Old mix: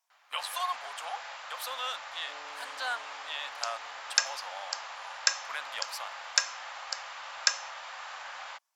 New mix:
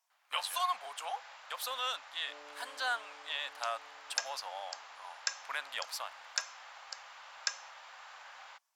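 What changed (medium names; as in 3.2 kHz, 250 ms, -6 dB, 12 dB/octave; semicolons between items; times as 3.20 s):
first sound -8.5 dB; reverb: off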